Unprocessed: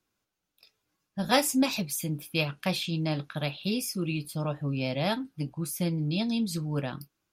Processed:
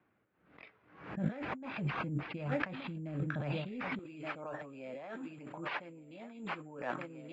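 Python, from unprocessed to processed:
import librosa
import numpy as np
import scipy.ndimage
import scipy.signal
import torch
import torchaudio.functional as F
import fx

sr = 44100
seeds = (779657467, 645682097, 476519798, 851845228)

y = fx.rotary_switch(x, sr, hz=1.0, then_hz=7.0, switch_at_s=4.54)
y = fx.echo_feedback(y, sr, ms=1174, feedback_pct=33, wet_db=-17.5)
y = (np.kron(y[::6], np.eye(6)[0]) * 6)[:len(y)]
y = fx.highpass(y, sr, hz=fx.steps((0.0, 100.0), (3.99, 470.0)), slope=12)
y = fx.over_compress(y, sr, threshold_db=-33.0, ratio=-1.0)
y = scipy.signal.sosfilt(scipy.signal.butter(4, 2000.0, 'lowpass', fs=sr, output='sos'), y)
y = fx.pre_swell(y, sr, db_per_s=92.0)
y = y * 10.0 ** (3.5 / 20.0)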